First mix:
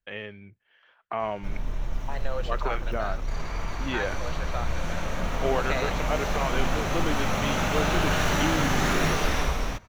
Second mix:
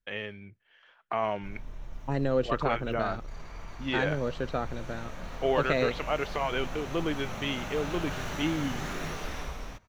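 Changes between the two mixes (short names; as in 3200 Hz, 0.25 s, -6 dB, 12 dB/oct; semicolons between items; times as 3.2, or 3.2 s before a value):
first voice: add high shelf 6800 Hz +11.5 dB; second voice: remove HPF 620 Hz 24 dB/oct; background -11.5 dB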